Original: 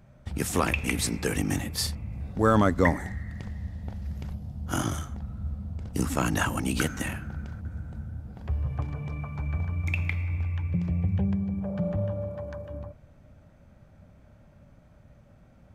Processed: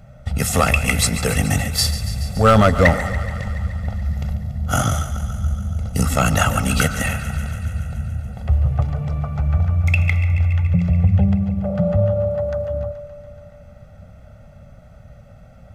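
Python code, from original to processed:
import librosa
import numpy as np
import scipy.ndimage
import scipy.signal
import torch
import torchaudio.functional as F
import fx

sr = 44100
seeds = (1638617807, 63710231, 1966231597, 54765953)

p1 = x + 0.83 * np.pad(x, (int(1.5 * sr / 1000.0), 0))[:len(x)]
p2 = np.clip(10.0 ** (13.5 / 20.0) * p1, -1.0, 1.0) / 10.0 ** (13.5 / 20.0)
p3 = p2 + fx.echo_thinned(p2, sr, ms=142, feedback_pct=74, hz=290.0, wet_db=-13, dry=0)
y = F.gain(torch.from_numpy(p3), 7.5).numpy()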